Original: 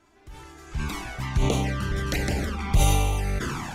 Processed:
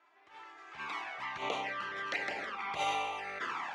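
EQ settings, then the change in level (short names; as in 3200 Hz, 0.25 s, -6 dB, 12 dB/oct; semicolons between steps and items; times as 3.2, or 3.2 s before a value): HPF 870 Hz 12 dB/oct; LPF 2400 Hz 12 dB/oct; notch 1500 Hz, Q 14; 0.0 dB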